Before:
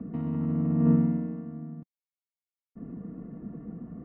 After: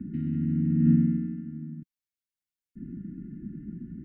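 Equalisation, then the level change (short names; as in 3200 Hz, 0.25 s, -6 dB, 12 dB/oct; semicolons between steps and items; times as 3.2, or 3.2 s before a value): brick-wall FIR band-stop 400–1400 Hz; low shelf 110 Hz +5 dB; 0.0 dB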